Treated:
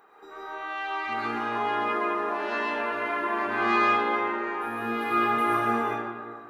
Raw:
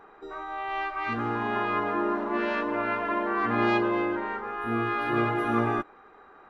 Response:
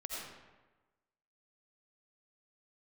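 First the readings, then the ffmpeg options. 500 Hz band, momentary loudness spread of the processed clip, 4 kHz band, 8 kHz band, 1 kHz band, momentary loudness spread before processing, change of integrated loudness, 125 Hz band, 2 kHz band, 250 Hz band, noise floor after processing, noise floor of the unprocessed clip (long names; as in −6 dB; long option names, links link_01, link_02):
−1.0 dB, 10 LU, +3.0 dB, can't be measured, +2.5 dB, 8 LU, +1.0 dB, −9.5 dB, +2.5 dB, −3.5 dB, −46 dBFS, −53 dBFS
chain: -filter_complex "[0:a]aemphasis=mode=production:type=bsi[link_01];[1:a]atrim=start_sample=2205,asetrate=28665,aresample=44100[link_02];[link_01][link_02]afir=irnorm=-1:irlink=0,volume=-2.5dB"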